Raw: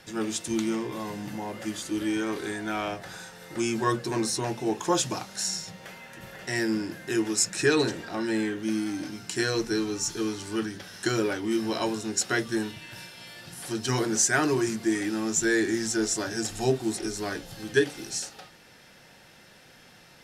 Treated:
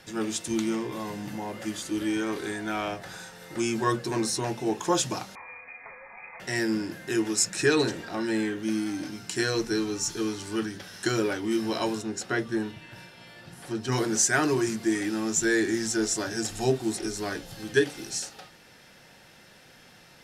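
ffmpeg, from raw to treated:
-filter_complex "[0:a]asettb=1/sr,asplit=3[a][b][c];[a]atrim=end=5.354[d];[b]atrim=start=5.35:end=6.4,asetpts=PTS-STARTPTS,afade=t=in:d=0.004:c=qsin,afade=t=out:st=1.046:d=0.004:c=qsin,lowpass=f=2.2k:t=q:w=0.5098,lowpass=f=2.2k:t=q:w=0.6013,lowpass=f=2.2k:t=q:w=0.9,lowpass=f=2.2k:t=q:w=2.563,afreqshift=-2600[e];[c]atrim=start=6.396[f];[d][e]acrossfade=d=0.004:c1=hsin:c2=qsin[g];[g][f]acrossfade=d=0.004:c1=qsin:c2=hsin,asettb=1/sr,asplit=3[h][i][j];[h]atrim=end=12.024[k];[i]atrim=start=12.02:end=13.92,asetpts=PTS-STARTPTS,afade=t=in:d=0.004:c=qsin,afade=t=out:st=1.896:d=0.004:c=qsin,highshelf=f=3.1k:g=-11[l];[j]atrim=start=13.916[m];[k][l]acrossfade=d=0.004:c1=hsin:c2=qsin[n];[n][m]acrossfade=d=0.004:c1=qsin:c2=hsin"

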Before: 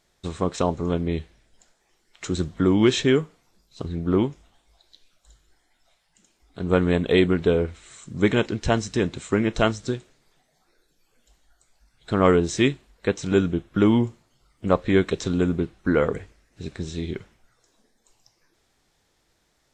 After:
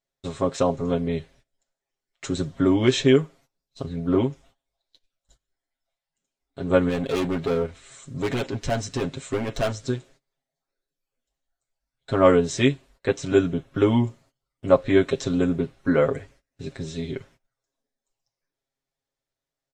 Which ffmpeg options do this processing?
-filter_complex "[0:a]asplit=3[a][b][c];[a]afade=t=out:st=6.88:d=0.02[d];[b]volume=21.5dB,asoftclip=hard,volume=-21.5dB,afade=t=in:st=6.88:d=0.02,afade=t=out:st=9.88:d=0.02[e];[c]afade=t=in:st=9.88:d=0.02[f];[d][e][f]amix=inputs=3:normalize=0,agate=range=-21dB:threshold=-51dB:ratio=16:detection=peak,equalizer=f=590:w=3.8:g=6,aecho=1:1:7.4:0.89,volume=-3dB"

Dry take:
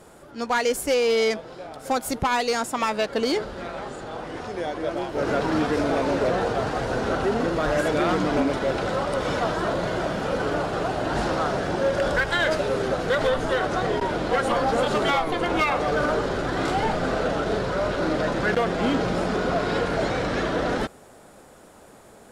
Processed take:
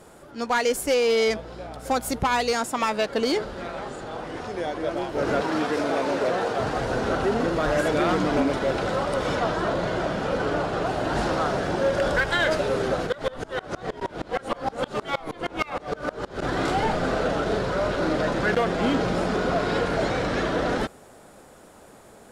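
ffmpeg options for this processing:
-filter_complex "[0:a]asettb=1/sr,asplit=3[a][b][c];[a]atrim=end=1.284[d];[b]atrim=start=1.28:end=2.52,asetpts=PTS-STARTPTS,afade=t=in:d=0.004:c=qsin,afade=t=out:st=1.236:d=0.004:c=qsin,aeval=exprs='val(0)+0.00794*(sin(2*PI*60*n/s)+sin(2*PI*2*60*n/s)/2+sin(2*PI*3*60*n/s)/3+sin(2*PI*4*60*n/s)/4+sin(2*PI*5*60*n/s)/5)':c=same[e];[c]atrim=start=2.516[f];[d][e]acrossfade=d=0.004:c1=hsin:c2=qsin[g];[g][f]acrossfade=d=0.004:c1=qsin:c2=hsin,asettb=1/sr,asplit=3[h][i][j];[h]atrim=end=5.424[k];[i]atrim=start=5.42:end=6.6,asetpts=PTS-STARTPTS,afade=t=in:d=0.004:c=qsin,afade=t=out:st=1.176:d=0.004:c=qsin,highpass=f=290:p=1[l];[j]atrim=start=6.596[m];[k][l]acrossfade=d=0.004:c1=hsin:c2=qsin[n];[n][m]acrossfade=d=0.004:c1=qsin:c2=hsin,asettb=1/sr,asplit=3[o][p][q];[o]atrim=end=9.354[r];[p]atrim=start=9.35:end=10.87,asetpts=PTS-STARTPTS,afade=t=in:d=0.004:c=qsin,afade=t=out:st=1.516:d=0.004:c=qsin,highshelf=f=11k:g=-10.5[s];[q]atrim=start=10.866[t];[r][s]acrossfade=d=0.004:c1=hsin:c2=qsin[u];[u][t]acrossfade=d=0.004:c1=qsin:c2=hsin,asplit=3[v][w][x];[v]afade=t=out:st=13.06:d=0.02[y];[w]aeval=exprs='val(0)*pow(10,-26*if(lt(mod(-6.4*n/s,1),2*abs(-6.4)/1000),1-mod(-6.4*n/s,1)/(2*abs(-6.4)/1000),(mod(-6.4*n/s,1)-2*abs(-6.4)/1000)/(1-2*abs(-6.4)/1000))/20)':c=same,afade=t=in:st=13.06:d=0.02,afade=t=out:st=16.41:d=0.02[z];[x]afade=t=in:st=16.41:d=0.02[aa];[y][z][aa]amix=inputs=3:normalize=0"

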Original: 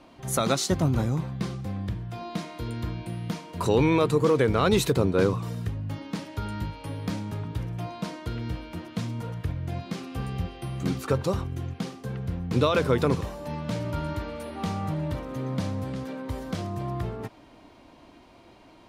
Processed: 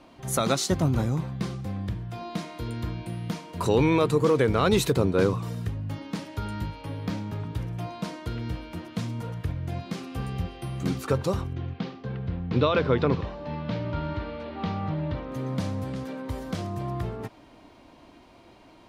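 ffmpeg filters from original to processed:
-filter_complex "[0:a]asettb=1/sr,asplit=3[a][b][c];[a]atrim=end=6.814[d];[b]atrim=start=6.81:end=7.4,asetpts=PTS-STARTPTS,afade=t=in:d=0.004:c=qsin,afade=t=out:st=0.586:d=0.004:c=qsin,equalizer=f=9.3k:w=0.98:g=-8[e];[c]atrim=start=7.396[f];[d][e]acrossfade=d=0.004:c1=hsin:c2=qsin[g];[g][f]acrossfade=d=0.004:c1=qsin:c2=hsin,asettb=1/sr,asplit=3[h][i][j];[h]atrim=end=11.534[k];[i]atrim=start=11.53:end=15.32,asetpts=PTS-STARTPTS,afade=t=in:d=0.004:c=qsin,afade=t=out:st=3.786:d=0.004:c=qsin,lowpass=f=4.3k:w=0.5412,lowpass=f=4.3k:w=1.3066[l];[j]atrim=start=15.316[m];[k][l]acrossfade=d=0.004:c1=hsin:c2=qsin[n];[n][m]acrossfade=d=0.004:c1=qsin:c2=hsin"

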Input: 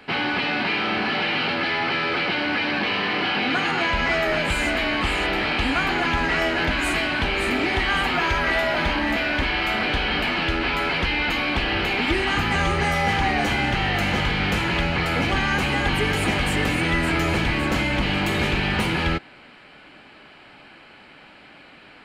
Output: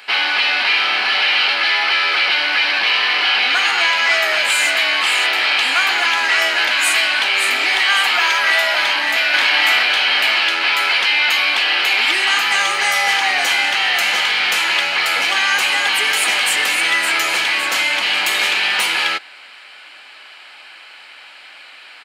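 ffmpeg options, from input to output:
-filter_complex "[0:a]asplit=2[a][b];[b]afade=t=in:st=8.77:d=0.01,afade=t=out:st=9.26:d=0.01,aecho=0:1:560|1120|1680|2240|2800|3360|3920:0.749894|0.374947|0.187474|0.0937368|0.0468684|0.0234342|0.0117171[c];[a][c]amix=inputs=2:normalize=0,highpass=760,highshelf=f=2.4k:g=12,volume=3.5dB"

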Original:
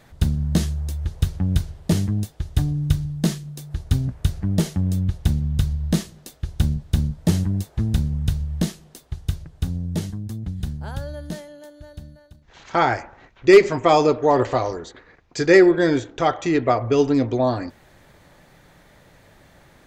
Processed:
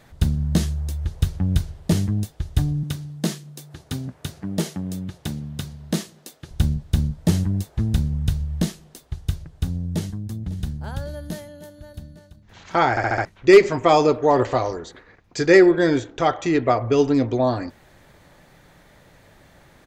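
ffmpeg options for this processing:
-filter_complex "[0:a]asettb=1/sr,asplit=3[a][b][c];[a]atrim=end=2.834[d];[b]atrim=start=2.83:end=6.51,asetpts=PTS-STARTPTS,afade=t=in:d=0.004:c=qsin,afade=t=out:st=3.676:d=0.004:c=qsin,highpass=200[e];[c]atrim=start=6.506[f];[d][e]acrossfade=d=0.004:c1=hsin:c2=qsin[g];[g][f]acrossfade=d=0.004:c1=qsin:c2=hsin,asplit=2[h][i];[i]afade=t=in:st=9.76:d=0.01,afade=t=out:st=10.4:d=0.01,aecho=0:1:550|1100|1650|2200|2750|3300|3850|4400|4950|5500:0.133352|0.100014|0.0750106|0.0562579|0.0421935|0.0316451|0.0237338|0.0178004|0.0133503|0.0100127[j];[h][j]amix=inputs=2:normalize=0,asettb=1/sr,asplit=3[k][l][m];[k]atrim=end=11.094[n];[l]atrim=start=11.09:end=11.99,asetpts=PTS-STARTPTS,afade=t=in:d=0.004:c=qsin,afade=t=out:st=0.896:d=0.004:c=qsin,equalizer=f=12k:w=2.1:g=8.5[o];[m]atrim=start=11.986[p];[n][o]acrossfade=d=0.004:c1=hsin:c2=qsin[q];[q][p]acrossfade=d=0.004:c1=qsin:c2=hsin,asplit=6[r][s][t][u][v][w];[r]atrim=end=12.972[x];[s]atrim=start=12.898:end=12.972[y];[t]atrim=start=12.898:end=12.972[z];[u]atrim=start=12.898:end=12.972[aa];[v]atrim=start=12.898:end=12.972[ab];[w]atrim=start=13.248[ac];[x][y]acrossfade=d=0.004:c1=hsin:c2=hsin[ad];[ad][z]acrossfade=d=0.004:c1=hsin:c2=hsin[ae];[ae][aa]acrossfade=d=0.004:c1=hsin:c2=hsin[af];[af][ab]acrossfade=d=0.004:c1=hsin:c2=hsin[ag];[ag][ac]acrossfade=d=0.004:c1=hsin:c2=hsin"

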